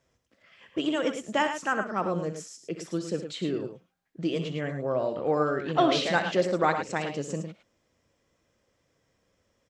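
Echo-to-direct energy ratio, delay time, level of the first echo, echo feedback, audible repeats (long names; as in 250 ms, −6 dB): −7.0 dB, 63 ms, −12.0 dB, repeats not evenly spaced, 2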